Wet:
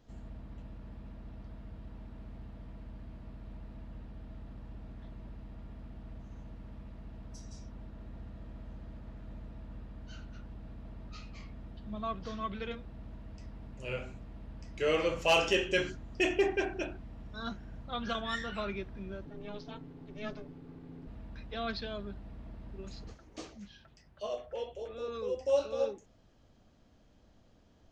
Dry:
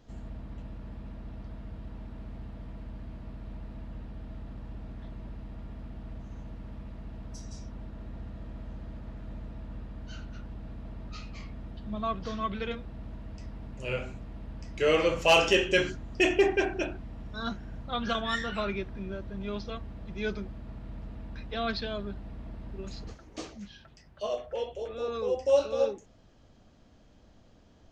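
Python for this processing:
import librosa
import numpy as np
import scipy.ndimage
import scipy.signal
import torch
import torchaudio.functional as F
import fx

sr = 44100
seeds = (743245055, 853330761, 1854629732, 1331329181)

y = fx.ring_mod(x, sr, carrier_hz=210.0, at=(19.25, 21.07))
y = fx.peak_eq(y, sr, hz=770.0, db=-14.5, octaves=0.23, at=(25.0, 25.41))
y = F.gain(torch.from_numpy(y), -5.0).numpy()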